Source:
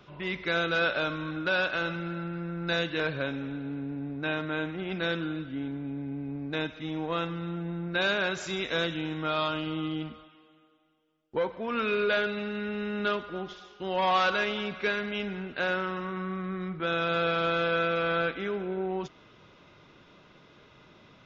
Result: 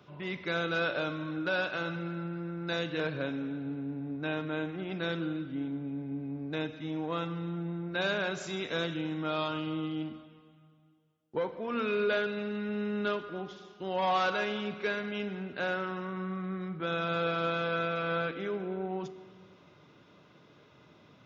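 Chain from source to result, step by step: high-pass 75 Hz 24 dB/octave; peaking EQ 2.5 kHz -4 dB 2.3 oct; simulated room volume 1100 m³, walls mixed, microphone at 0.38 m; trim -2 dB

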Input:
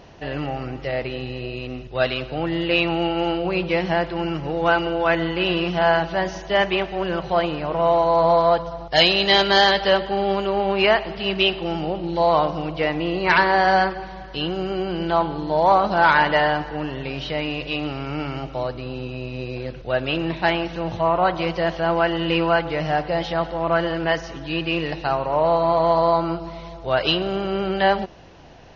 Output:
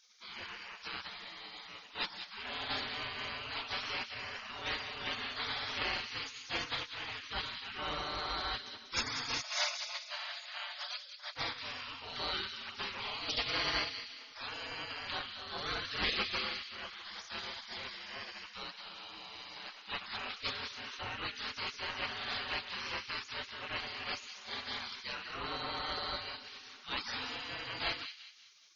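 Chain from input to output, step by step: 9.40–11.37 s: steep high-pass 730 Hz 72 dB/octave; spectral gate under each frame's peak -25 dB weak; feedback echo behind a high-pass 189 ms, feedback 38%, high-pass 2.6 kHz, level -7.5 dB

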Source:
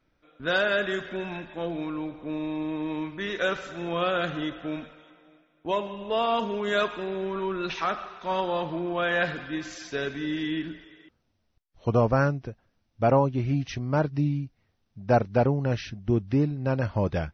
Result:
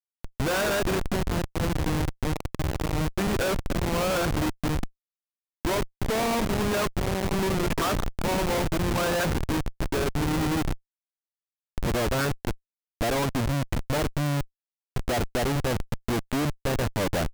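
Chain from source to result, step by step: low-pass 1.8 kHz 12 dB/octave; upward compressor, threshold -27 dBFS; harmonic-percussive split percussive +9 dB; Schmitt trigger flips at -27 dBFS

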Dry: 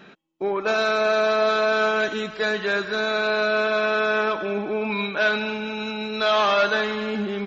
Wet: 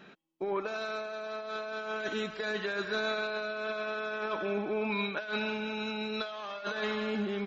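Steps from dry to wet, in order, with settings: compressor with a negative ratio -24 dBFS, ratio -0.5; trim -9 dB

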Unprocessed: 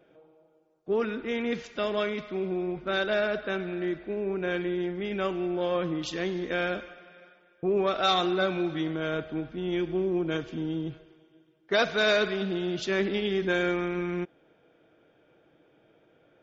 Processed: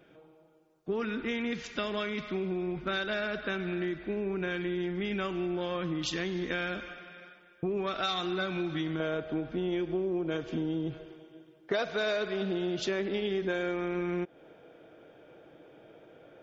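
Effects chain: peaking EQ 560 Hz -7 dB 1.4 oct, from 9.00 s +4 dB; compression 5:1, threshold -35 dBFS, peak gain reduction 15.5 dB; trim +5.5 dB

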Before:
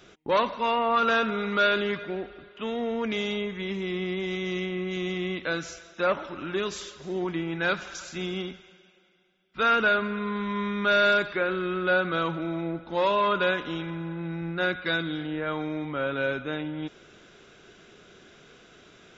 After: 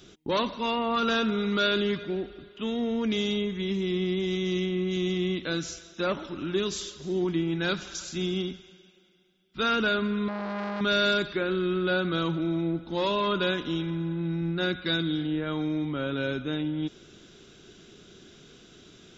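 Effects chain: high-order bell 1.1 kHz -9 dB 2.7 oct; 10.28–10.81 s: transformer saturation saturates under 1.1 kHz; trim +4 dB

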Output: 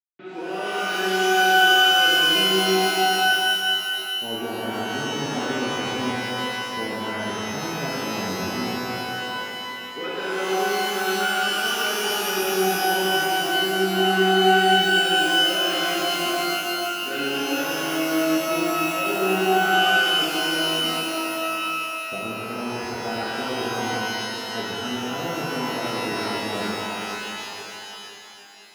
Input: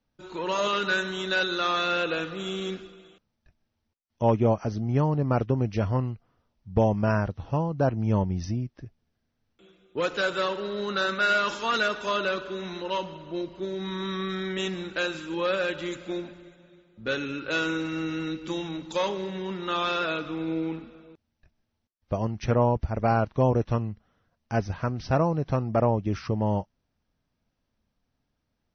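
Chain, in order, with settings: small samples zeroed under -46 dBFS; reverse; compression 6:1, threshold -36 dBFS, peak gain reduction 18 dB; reverse; cabinet simulation 230–2900 Hz, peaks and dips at 250 Hz +5 dB, 380 Hz +4 dB, 580 Hz -7 dB, 1 kHz -10 dB; pitch-shifted reverb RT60 3.3 s, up +12 st, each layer -2 dB, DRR -7 dB; trim +5 dB

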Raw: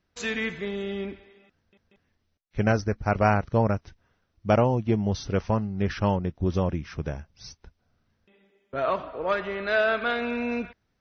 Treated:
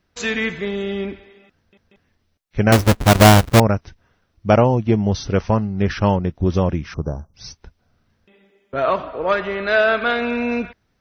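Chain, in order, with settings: 2.72–3.60 s: square wave that keeps the level; 6.94–7.34 s: Chebyshev band-stop 1.2–6.4 kHz, order 3; trim +7 dB

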